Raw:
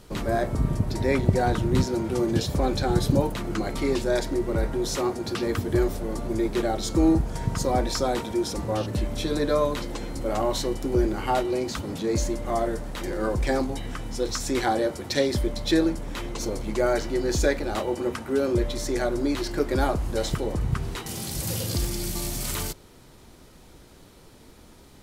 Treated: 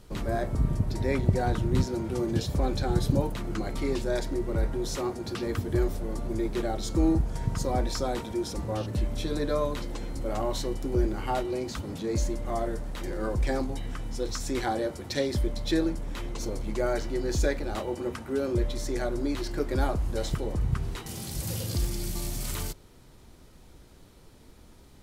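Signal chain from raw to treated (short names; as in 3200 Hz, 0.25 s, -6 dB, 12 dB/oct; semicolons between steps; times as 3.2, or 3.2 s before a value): low shelf 120 Hz +6.5 dB; gain -5.5 dB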